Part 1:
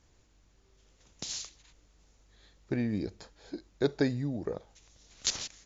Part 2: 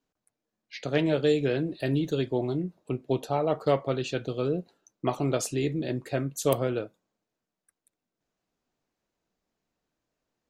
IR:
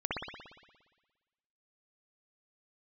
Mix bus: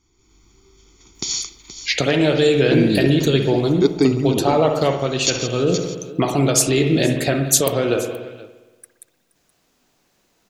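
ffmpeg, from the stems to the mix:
-filter_complex "[0:a]equalizer=f=370:t=o:w=0.85:g=13.5,aecho=1:1:0.9:0.89,volume=-8dB,asplit=3[a][b][c];[b]volume=-23dB[d];[c]volume=-12dB[e];[1:a]alimiter=limit=-23dB:level=0:latency=1:release=237,adelay=1150,volume=1dB,asplit=3[f][g][h];[g]volume=-9dB[i];[h]volume=-18.5dB[j];[2:a]atrim=start_sample=2205[k];[d][i]amix=inputs=2:normalize=0[l];[l][k]afir=irnorm=-1:irlink=0[m];[e][j]amix=inputs=2:normalize=0,aecho=0:1:474:1[n];[a][f][m][n]amix=inputs=4:normalize=0,highshelf=f=2.2k:g=8.5,dynaudnorm=f=170:g=3:m=12dB"

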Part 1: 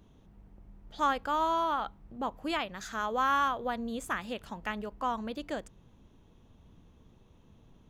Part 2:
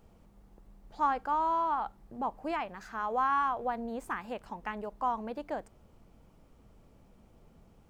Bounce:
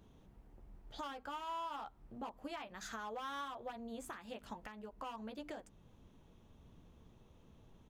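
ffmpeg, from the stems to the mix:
-filter_complex "[0:a]bandreject=f=50:t=h:w=6,bandreject=f=100:t=h:w=6,bandreject=f=150:t=h:w=6,bandreject=f=200:t=h:w=6,bandreject=f=250:t=h:w=6,bandreject=f=300:t=h:w=6,volume=-3dB[a];[1:a]aeval=exprs='0.0447*(abs(mod(val(0)/0.0447+3,4)-2)-1)':c=same,highpass=f=78:w=0.5412,highpass=f=78:w=1.3066,volume=-1,adelay=13,volume=-11.5dB,asplit=2[b][c];[c]apad=whole_len=348227[d];[a][d]sidechaincompress=threshold=-56dB:ratio=3:attack=33:release=160[e];[e][b]amix=inputs=2:normalize=0,alimiter=level_in=10.5dB:limit=-24dB:level=0:latency=1:release=431,volume=-10.5dB"

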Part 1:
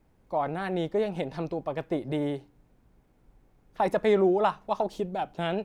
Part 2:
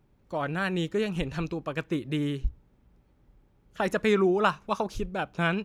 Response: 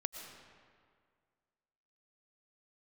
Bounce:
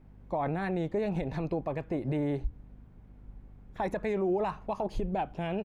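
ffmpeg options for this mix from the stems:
-filter_complex "[0:a]bass=f=250:g=4,treble=f=4k:g=-12,alimiter=limit=-22dB:level=0:latency=1:release=118,aeval=exprs='val(0)+0.00178*(sin(2*PI*50*n/s)+sin(2*PI*2*50*n/s)/2+sin(2*PI*3*50*n/s)/3+sin(2*PI*4*50*n/s)/4+sin(2*PI*5*50*n/s)/5)':c=same,volume=2.5dB[a];[1:a]asubboost=boost=8:cutoff=120,adelay=0.4,volume=-13.5dB[b];[a][b]amix=inputs=2:normalize=0,alimiter=limit=-22.5dB:level=0:latency=1:release=89"

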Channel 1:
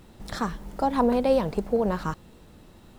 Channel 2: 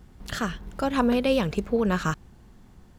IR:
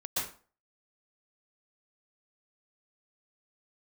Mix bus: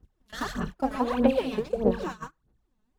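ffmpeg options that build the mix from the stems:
-filter_complex "[0:a]lowpass=f=3.6k:p=1,lowshelf=f=210:t=q:w=1.5:g=-11.5,volume=-8.5dB,asplit=2[a][b];[1:a]acompressor=threshold=-40dB:ratio=2,volume=-1,volume=-2dB,asplit=2[c][d];[d]volume=-4dB[e];[b]apad=whole_len=131614[f];[c][f]sidechaincompress=threshold=-44dB:ratio=5:attack=37:release=917[g];[2:a]atrim=start_sample=2205[h];[e][h]afir=irnorm=-1:irlink=0[i];[a][g][i]amix=inputs=3:normalize=0,aphaser=in_gain=1:out_gain=1:delay=4.7:decay=0.75:speed=1.6:type=sinusoidal,agate=range=-28dB:threshold=-33dB:ratio=16:detection=peak"

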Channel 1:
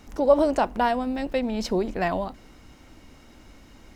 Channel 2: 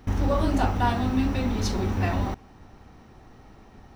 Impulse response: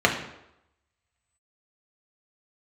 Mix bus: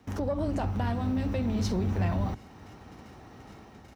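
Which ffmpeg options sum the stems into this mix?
-filter_complex "[0:a]agate=range=-19dB:threshold=-46dB:ratio=16:detection=peak,volume=2.5dB[a];[1:a]dynaudnorm=f=170:g=5:m=9.5dB,adelay=1,volume=-7dB[b];[a][b]amix=inputs=2:normalize=0,highpass=76,acrossover=split=190[c][d];[d]acompressor=threshold=-37dB:ratio=2.5[e];[c][e]amix=inputs=2:normalize=0,asoftclip=type=tanh:threshold=-19.5dB"

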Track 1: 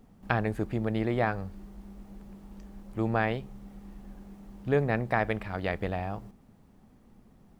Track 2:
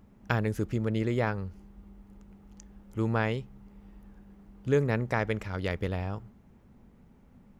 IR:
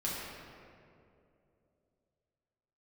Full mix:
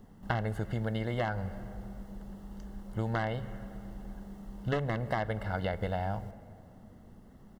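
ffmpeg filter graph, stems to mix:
-filter_complex "[0:a]volume=1dB,asplit=2[a][b];[b]volume=-22dB[c];[1:a]aeval=exprs='(mod(7.08*val(0)+1,2)-1)/7.08':c=same,lowpass=f=2.3k:t=q:w=1.5,adelay=1.4,volume=-4dB,asplit=2[d][e];[e]volume=-20dB[f];[2:a]atrim=start_sample=2205[g];[c][f]amix=inputs=2:normalize=0[h];[h][g]afir=irnorm=-1:irlink=0[i];[a][d][i]amix=inputs=3:normalize=0,acrossover=split=1500|4700[j][k][l];[j]acompressor=threshold=-29dB:ratio=4[m];[k]acompressor=threshold=-42dB:ratio=4[n];[l]acompressor=threshold=-56dB:ratio=4[o];[m][n][o]amix=inputs=3:normalize=0,asuperstop=centerf=2400:order=12:qfactor=5.7"

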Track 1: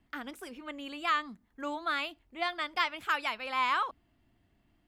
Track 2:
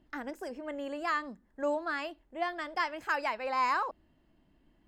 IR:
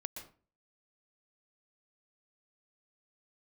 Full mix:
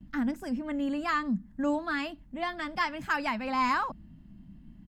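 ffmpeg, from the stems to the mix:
-filter_complex "[0:a]volume=-11dB[a];[1:a]adelay=7.8,volume=2.5dB[b];[a][b]amix=inputs=2:normalize=0,lowshelf=f=290:t=q:w=3:g=13"

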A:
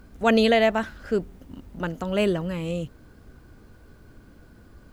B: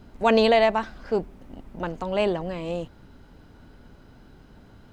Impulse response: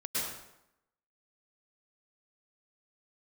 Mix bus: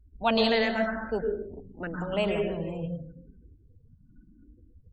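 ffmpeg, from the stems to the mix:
-filter_complex "[0:a]asplit=2[a][b];[b]afreqshift=0.88[c];[a][c]amix=inputs=2:normalize=1,volume=-6dB,asplit=2[d][e];[e]volume=-3.5dB[f];[1:a]agate=range=-33dB:threshold=-40dB:ratio=3:detection=peak,volume=-1,volume=-6dB[g];[2:a]atrim=start_sample=2205[h];[f][h]afir=irnorm=-1:irlink=0[i];[d][g][i]amix=inputs=3:normalize=0,afftdn=nr=34:nf=-45"

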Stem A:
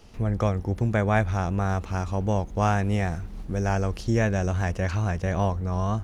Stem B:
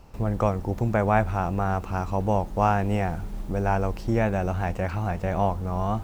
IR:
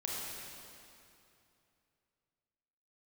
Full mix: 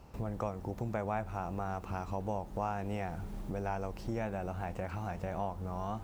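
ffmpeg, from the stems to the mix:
-filter_complex "[0:a]volume=-12dB[a];[1:a]highshelf=f=3.8k:g=9,volume=-1,volume=-3dB,asplit=2[b][c];[c]apad=whole_len=266291[d];[a][d]sidechaingate=range=-33dB:threshold=-31dB:ratio=16:detection=peak[e];[e][b]amix=inputs=2:normalize=0,highpass=43,highshelf=f=3k:g=-10.5,acompressor=threshold=-37dB:ratio=2"

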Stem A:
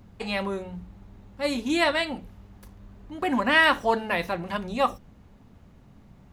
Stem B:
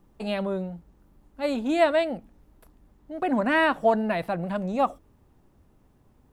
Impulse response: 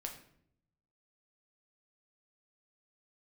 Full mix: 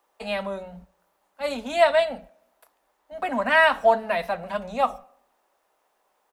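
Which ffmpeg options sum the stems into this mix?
-filter_complex "[0:a]agate=range=-36dB:threshold=-39dB:ratio=16:detection=peak,aecho=1:1:4.5:0.89,volume=-10dB,asplit=2[a][b];[b]volume=-20dB[c];[1:a]highpass=f=570:w=0.5412,highpass=f=570:w=1.3066,volume=0dB,asplit=2[d][e];[e]volume=-6.5dB[f];[2:a]atrim=start_sample=2205[g];[c][f]amix=inputs=2:normalize=0[h];[h][g]afir=irnorm=-1:irlink=0[i];[a][d][i]amix=inputs=3:normalize=0"

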